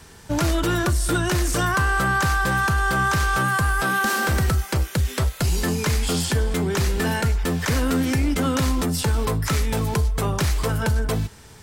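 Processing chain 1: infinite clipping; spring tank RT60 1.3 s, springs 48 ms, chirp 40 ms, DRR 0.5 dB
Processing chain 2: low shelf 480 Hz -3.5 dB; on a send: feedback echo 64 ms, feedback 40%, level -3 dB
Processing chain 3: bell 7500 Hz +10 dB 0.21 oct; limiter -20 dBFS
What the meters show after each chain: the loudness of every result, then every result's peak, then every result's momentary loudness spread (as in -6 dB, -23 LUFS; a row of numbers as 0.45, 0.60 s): -19.0, -21.5, -27.5 LUFS; -8.5, -9.5, -20.0 dBFS; 3, 5, 3 LU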